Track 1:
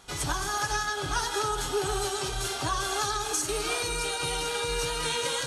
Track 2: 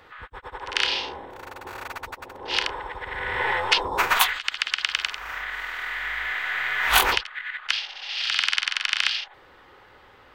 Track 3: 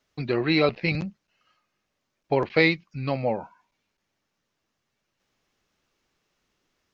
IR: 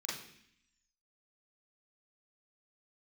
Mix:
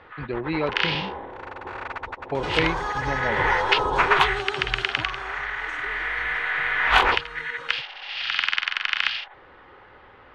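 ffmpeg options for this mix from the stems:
-filter_complex "[0:a]acompressor=mode=upward:threshold=-23dB:ratio=2.5,adelay=2350,afade=t=out:st=4.59:d=0.76:silence=0.251189[a];[1:a]volume=3dB[b];[2:a]volume=-4.5dB[c];[a][b][c]amix=inputs=3:normalize=0,lowpass=2.6k"

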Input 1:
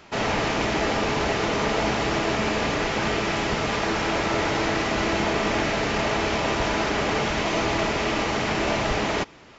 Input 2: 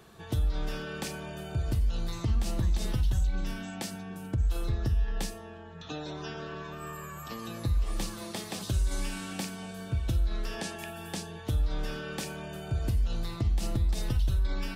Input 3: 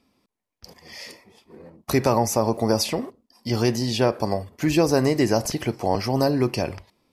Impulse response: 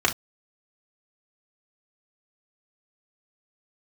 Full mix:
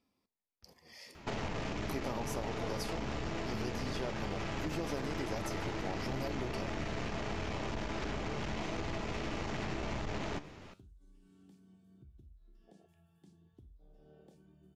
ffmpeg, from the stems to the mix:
-filter_complex "[0:a]lowshelf=f=220:g=12,alimiter=limit=-17.5dB:level=0:latency=1:release=71,aeval=exprs='(tanh(14.1*val(0)+0.55)-tanh(0.55))/14.1':c=same,adelay=1150,volume=0dB[a];[1:a]afwtdn=0.0316,acompressor=threshold=-36dB:ratio=5,adelay=2100,volume=-16dB,asplit=2[b][c];[c]volume=-21dB[d];[2:a]volume=-9.5dB[e];[3:a]atrim=start_sample=2205[f];[d][f]afir=irnorm=-1:irlink=0[g];[a][b][e][g]amix=inputs=4:normalize=0,flanger=delay=9.7:depth=7.3:regen=79:speed=0.55:shape=triangular,acompressor=threshold=-33dB:ratio=6"

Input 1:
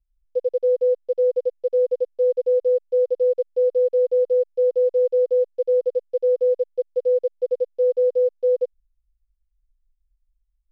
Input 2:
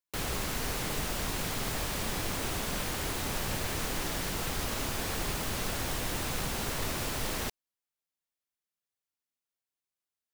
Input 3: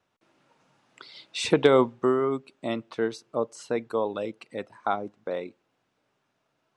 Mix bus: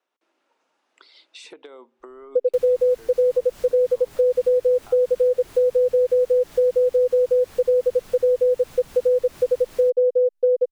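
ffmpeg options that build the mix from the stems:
-filter_complex "[0:a]equalizer=f=380:t=o:w=2.7:g=9.5,adelay=2000,volume=-1dB[a];[1:a]adelay=2400,volume=-3dB[b];[2:a]highpass=f=300:w=0.5412,highpass=f=300:w=1.3066,acompressor=threshold=-31dB:ratio=2,volume=-5dB[c];[b][c]amix=inputs=2:normalize=0,acompressor=threshold=-40dB:ratio=6,volume=0dB[d];[a][d]amix=inputs=2:normalize=0,acompressor=threshold=-16dB:ratio=6"

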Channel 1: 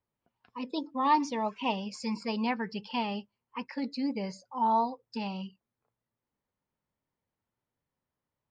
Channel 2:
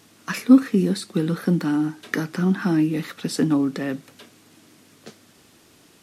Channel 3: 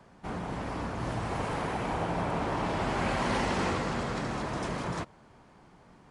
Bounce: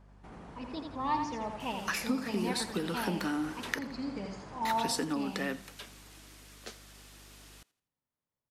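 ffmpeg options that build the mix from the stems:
-filter_complex "[0:a]volume=-7dB,asplit=2[a][b];[b]volume=-5.5dB[c];[1:a]highpass=f=770:p=1,adelay=1600,volume=1dB,asplit=3[d][e][f];[d]atrim=end=3.79,asetpts=PTS-STARTPTS,afade=t=out:st=3.786:d=0.004:c=hsin[g];[e]atrim=start=3.79:end=4.65,asetpts=PTS-STARTPTS,volume=0[h];[f]atrim=start=4.65,asetpts=PTS-STARTPTS,afade=t=in:d=0.004:c=hsin[i];[g][h][i]concat=n=3:v=0:a=1,asplit=2[j][k];[k]volume=-22.5dB[l];[2:a]acompressor=threshold=-41dB:ratio=2.5,volume=-9.5dB,asplit=2[m][n];[n]volume=-3dB[o];[j][m]amix=inputs=2:normalize=0,aeval=exprs='val(0)+0.00158*(sin(2*PI*50*n/s)+sin(2*PI*2*50*n/s)/2+sin(2*PI*3*50*n/s)/3+sin(2*PI*4*50*n/s)/4+sin(2*PI*5*50*n/s)/5)':c=same,acompressor=threshold=-30dB:ratio=5,volume=0dB[p];[c][l][o]amix=inputs=3:normalize=0,aecho=0:1:84|168|252|336|420:1|0.36|0.13|0.0467|0.0168[q];[a][p][q]amix=inputs=3:normalize=0"

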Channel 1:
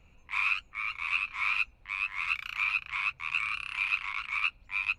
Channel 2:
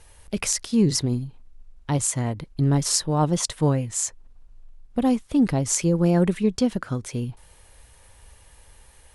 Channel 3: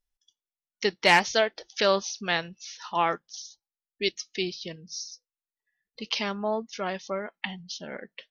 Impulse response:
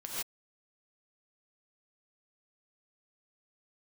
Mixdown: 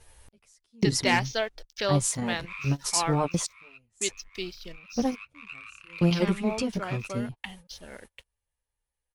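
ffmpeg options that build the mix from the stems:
-filter_complex "[0:a]adelay=2150,afade=t=out:st=2.79:d=0.72:silence=0.237137,afade=t=in:st=4.8:d=0.58:silence=0.298538[a];[1:a]asplit=2[b][c];[c]adelay=10.4,afreqshift=-2.6[d];[b][d]amix=inputs=2:normalize=1,volume=-0.5dB[e];[2:a]aeval=exprs='sgn(val(0))*max(abs(val(0))-0.00335,0)':c=same,volume=-5dB,asplit=2[f][g];[g]apad=whole_len=403782[h];[e][h]sidechaingate=range=-32dB:threshold=-48dB:ratio=16:detection=peak[i];[a][i][f]amix=inputs=3:normalize=0"

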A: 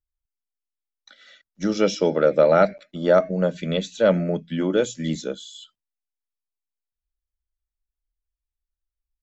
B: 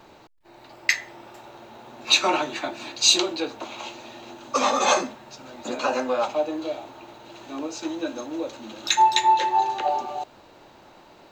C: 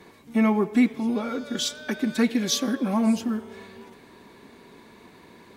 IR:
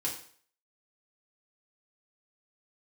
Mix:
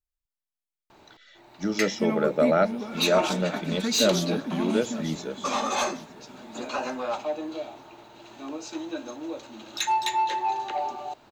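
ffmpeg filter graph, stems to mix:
-filter_complex "[0:a]volume=-4.5dB,asplit=2[a][b];[b]volume=-19.5dB[c];[1:a]asoftclip=type=tanh:threshold=-14.5dB,adelay=900,volume=-4dB[d];[2:a]adelay=1650,volume=-7.5dB,asplit=2[e][f];[f]volume=-12.5dB[g];[c][g]amix=inputs=2:normalize=0,aecho=0:1:906|1812|2718|3624|4530:1|0.39|0.152|0.0593|0.0231[h];[a][d][e][h]amix=inputs=4:normalize=0,bandreject=f=520:w=12"

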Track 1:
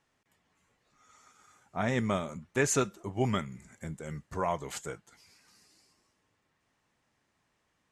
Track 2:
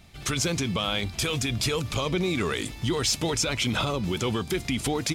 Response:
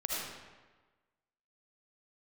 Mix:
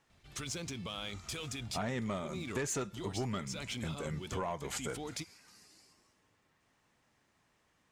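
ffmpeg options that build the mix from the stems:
-filter_complex "[0:a]asoftclip=type=tanh:threshold=-22.5dB,volume=2.5dB,asplit=2[a][b];[1:a]highshelf=f=7k:g=9.5,adynamicsmooth=sensitivity=6.5:basefreq=6.4k,adelay=100,volume=-14.5dB[c];[b]apad=whole_len=231351[d];[c][d]sidechaincompress=threshold=-35dB:ratio=8:attack=21:release=243[e];[a][e]amix=inputs=2:normalize=0,acompressor=threshold=-34dB:ratio=5"

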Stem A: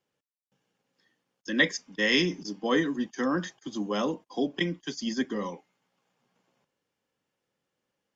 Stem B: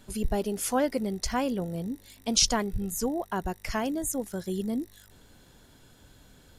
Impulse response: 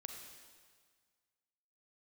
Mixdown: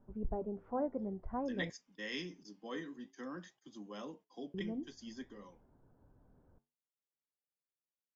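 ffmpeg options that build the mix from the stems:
-filter_complex "[0:a]volume=-13.5dB,afade=t=out:st=5.11:d=0.64:silence=0.334965[a];[1:a]lowpass=f=1.1k:w=0.5412,lowpass=f=1.1k:w=1.3066,volume=-5.5dB,asplit=3[b][c][d];[b]atrim=end=1.7,asetpts=PTS-STARTPTS,afade=t=out:st=1.696:d=0.004:c=hsin[e];[c]atrim=start=1.7:end=4.54,asetpts=PTS-STARTPTS,volume=0[f];[d]atrim=start=4.54,asetpts=PTS-STARTPTS,afade=t=in:d=0.004:c=hsin[g];[e][f][g]concat=n=3:v=0:a=1[h];[a][h]amix=inputs=2:normalize=0,flanger=delay=5:depth=5.9:regen=-78:speed=0.53:shape=triangular"

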